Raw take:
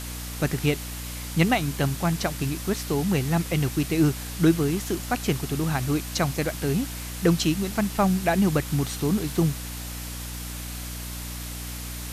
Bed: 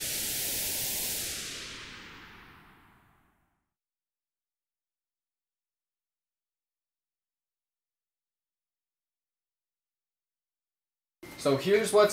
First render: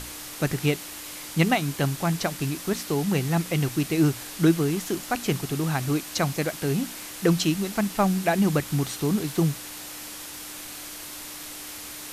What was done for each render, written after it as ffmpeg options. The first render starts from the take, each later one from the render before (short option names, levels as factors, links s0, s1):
-af "bandreject=f=60:t=h:w=6,bandreject=f=120:t=h:w=6,bandreject=f=180:t=h:w=6,bandreject=f=240:t=h:w=6"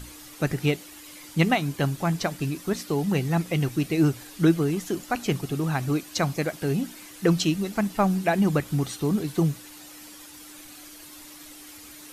-af "afftdn=nr=10:nf=-39"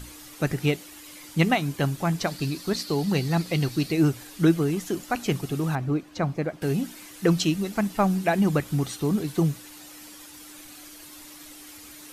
-filter_complex "[0:a]asettb=1/sr,asplit=3[s0][s1][s2];[s0]atrim=end=2.274[s3];[s1]atrim=start=2.27:end=3.92,asetpts=PTS-STARTPTS,afade=t=in:d=0.004:c=qsin,afade=t=out:st=1.646:d=0.004:c=qsin,equalizer=f=4400:t=o:w=0.37:g=12.5[s4];[s2]atrim=start=3.916[s5];[s3][s4]acrossfade=d=0.004:c1=hsin:c2=qsin[s6];[s6][s5]acrossfade=d=0.004:c1=qsin:c2=hsin,asettb=1/sr,asplit=3[s7][s8][s9];[s7]atrim=end=5.754[s10];[s8]atrim=start=5.75:end=6.62,asetpts=PTS-STARTPTS,afade=t=in:d=0.004:c=qsin,afade=t=out:st=0.866:d=0.004:c=qsin,lowpass=f=1100:p=1[s11];[s9]atrim=start=6.616[s12];[s10][s11]acrossfade=d=0.004:c1=hsin:c2=qsin[s13];[s13][s12]acrossfade=d=0.004:c1=qsin:c2=hsin"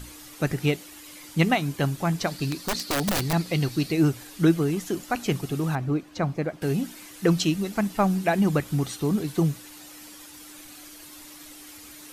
-filter_complex "[0:a]asettb=1/sr,asplit=3[s0][s1][s2];[s0]atrim=end=2.514[s3];[s1]atrim=start=2.51:end=3.33,asetpts=PTS-STARTPTS,afade=t=in:d=0.004:c=qsin,afade=t=out:st=0.816:d=0.004:c=qsin,aeval=exprs='(mod(9.44*val(0)+1,2)-1)/9.44':c=same[s4];[s2]atrim=start=3.326[s5];[s3][s4]acrossfade=d=0.004:c1=hsin:c2=qsin[s6];[s6][s5]acrossfade=d=0.004:c1=qsin:c2=hsin"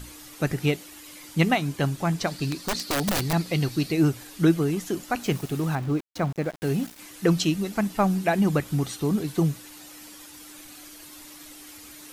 -filter_complex "[0:a]asettb=1/sr,asplit=3[s0][s1][s2];[s0]atrim=end=1.584[s3];[s1]atrim=start=1.58:end=2.83,asetpts=PTS-STARTPTS,afade=t=in:d=0.004:c=qsin,afade=t=out:st=1.246:d=0.004:c=qsin,equalizer=f=12000:w=5.1:g=-7.5[s4];[s2]atrim=start=2.826[s5];[s3][s4]acrossfade=d=0.004:c1=hsin:c2=qsin[s6];[s6][s5]acrossfade=d=0.004:c1=qsin:c2=hsin,asettb=1/sr,asplit=3[s7][s8][s9];[s7]atrim=end=5.234[s10];[s8]atrim=start=5.23:end=6.99,asetpts=PTS-STARTPTS,afade=t=in:d=0.004:c=qsin,afade=t=out:st=1.756:d=0.004:c=qsin,aeval=exprs='val(0)*gte(abs(val(0)),0.0119)':c=same[s11];[s9]atrim=start=6.986[s12];[s10][s11]acrossfade=d=0.004:c1=hsin:c2=qsin[s13];[s13][s12]acrossfade=d=0.004:c1=qsin:c2=hsin"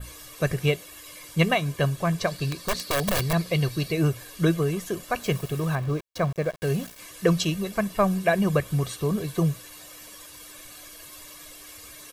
-af "aecho=1:1:1.8:0.63,adynamicequalizer=threshold=0.00447:dfrequency=5700:dqfactor=1.2:tfrequency=5700:tqfactor=1.2:attack=5:release=100:ratio=0.375:range=2:mode=cutabove:tftype=bell"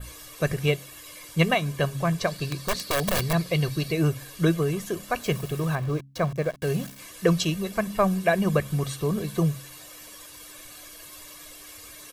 -af "bandreject=f=68.19:t=h:w=4,bandreject=f=136.38:t=h:w=4,bandreject=f=204.57:t=h:w=4,bandreject=f=272.76:t=h:w=4"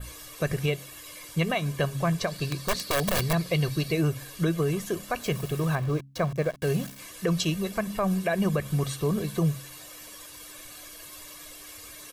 -af "alimiter=limit=0.158:level=0:latency=1:release=99"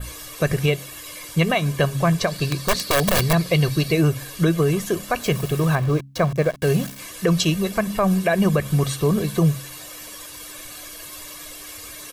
-af "volume=2.24"